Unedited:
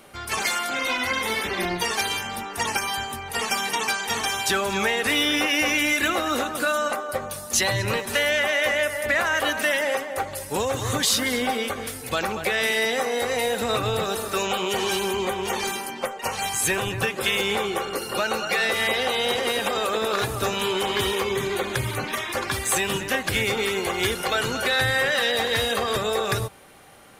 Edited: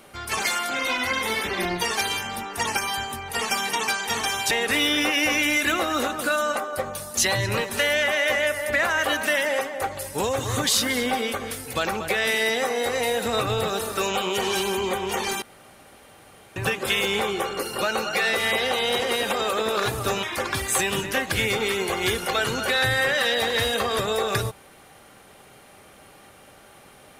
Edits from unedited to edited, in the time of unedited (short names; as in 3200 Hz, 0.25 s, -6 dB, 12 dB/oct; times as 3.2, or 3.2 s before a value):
4.51–4.87 cut
15.78–16.92 room tone
20.59–22.2 cut